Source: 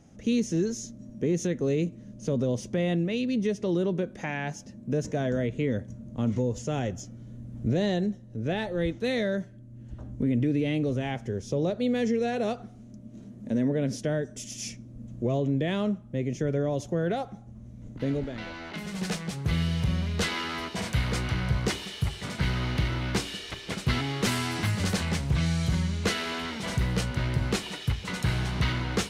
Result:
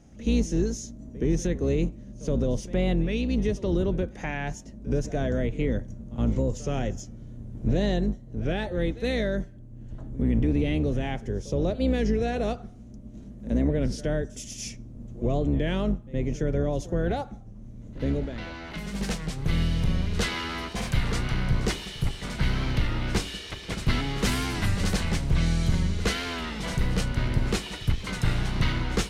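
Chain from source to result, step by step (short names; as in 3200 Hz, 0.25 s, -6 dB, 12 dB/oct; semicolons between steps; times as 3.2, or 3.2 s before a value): octaver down 2 oct, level 0 dB; reverse echo 69 ms -17.5 dB; record warp 33 1/3 rpm, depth 100 cents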